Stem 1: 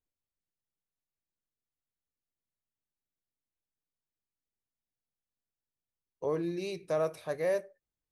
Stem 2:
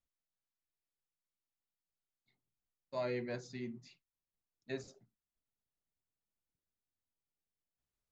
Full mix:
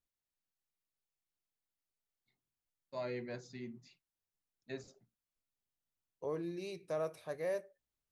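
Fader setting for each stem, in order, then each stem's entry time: -7.0, -3.0 dB; 0.00, 0.00 s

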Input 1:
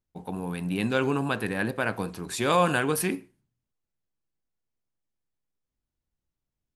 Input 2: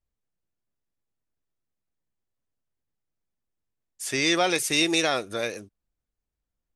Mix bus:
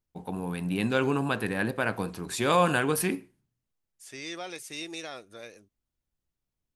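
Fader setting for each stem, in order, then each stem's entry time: -0.5, -15.5 dB; 0.00, 0.00 s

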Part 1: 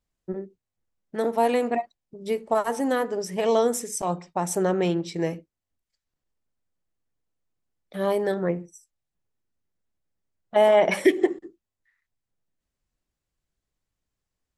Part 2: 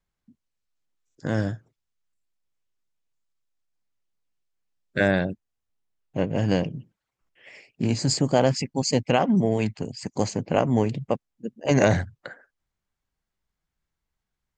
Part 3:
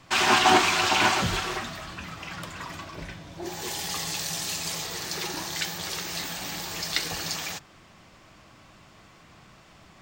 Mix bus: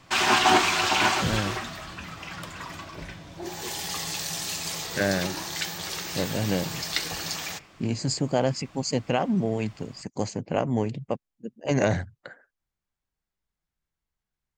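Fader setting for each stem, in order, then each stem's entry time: off, -4.0 dB, -0.5 dB; off, 0.00 s, 0.00 s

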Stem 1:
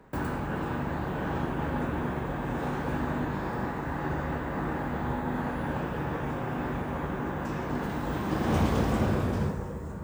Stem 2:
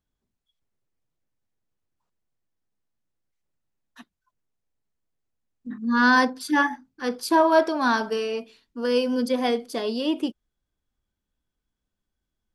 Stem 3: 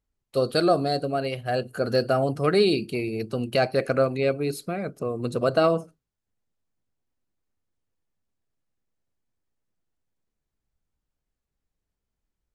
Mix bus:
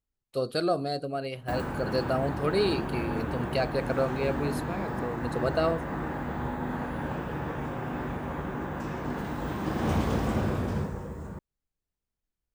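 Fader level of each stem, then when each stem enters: -1.5 dB, off, -6.0 dB; 1.35 s, off, 0.00 s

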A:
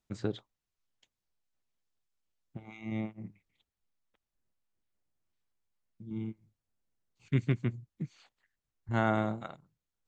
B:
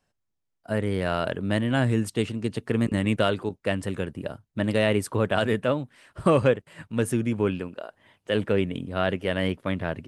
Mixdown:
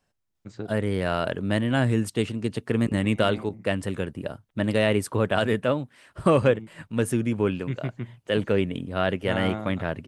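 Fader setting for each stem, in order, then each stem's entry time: -2.0, +0.5 dB; 0.35, 0.00 s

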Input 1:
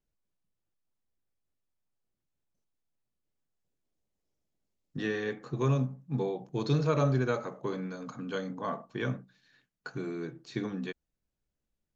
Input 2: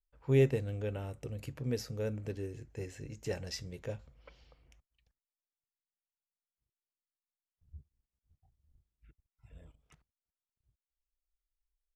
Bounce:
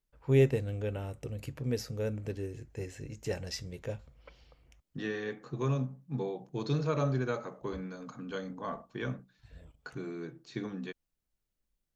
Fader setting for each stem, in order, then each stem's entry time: -3.5, +2.0 dB; 0.00, 0.00 s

